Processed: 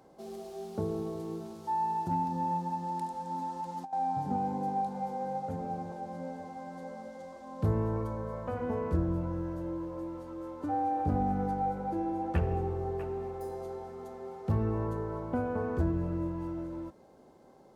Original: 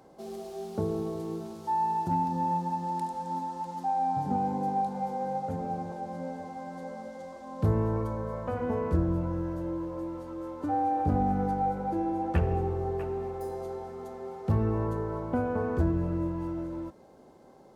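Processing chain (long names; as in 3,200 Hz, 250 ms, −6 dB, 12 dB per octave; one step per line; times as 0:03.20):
0:03.36–0:03.93: compressor whose output falls as the input rises −33 dBFS, ratio −0.5
level −3 dB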